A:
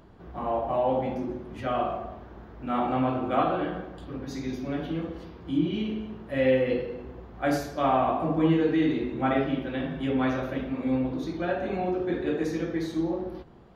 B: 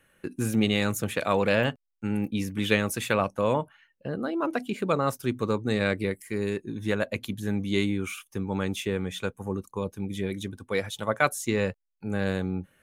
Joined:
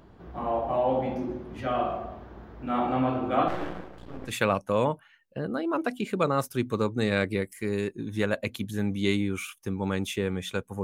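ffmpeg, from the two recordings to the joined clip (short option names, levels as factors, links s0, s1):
-filter_complex "[0:a]asettb=1/sr,asplit=3[s0][s1][s2];[s0]atrim=end=3.484[s3];[s1]atrim=start=3.48:end=4.33,asetpts=PTS-STARTPTS,afade=t=in:d=0.004:c=qsin,afade=t=out:st=0.846:d=0.004:c=qsin,aeval=exprs='max(val(0),0)':c=same[s4];[s2]atrim=start=4.326[s5];[s3][s4]acrossfade=d=0.004:c1=hsin:c2=qsin[s6];[s6][s5]acrossfade=d=0.004:c1=qsin:c2=hsin,apad=whole_dur=10.83,atrim=end=10.83,atrim=end=4.33,asetpts=PTS-STARTPTS[s7];[1:a]atrim=start=2.94:end=9.52,asetpts=PTS-STARTPTS[s8];[s7][s8]acrossfade=d=0.08:c1=tri:c2=tri"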